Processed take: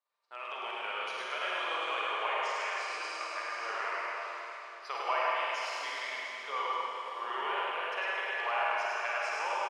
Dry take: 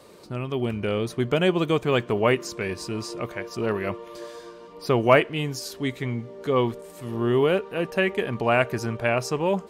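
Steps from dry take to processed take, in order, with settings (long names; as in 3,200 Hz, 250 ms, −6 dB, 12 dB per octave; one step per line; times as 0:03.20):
downward expander −32 dBFS
high-pass filter 860 Hz 24 dB per octave
high-shelf EQ 5,200 Hz +11.5 dB
downward compressor 2.5 to 1, threshold −33 dBFS, peak gain reduction 12 dB
head-to-tape spacing loss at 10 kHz 29 dB
on a send: single-tap delay 104 ms −3 dB
on the sum: four-comb reverb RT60 3.7 s, DRR −5 dB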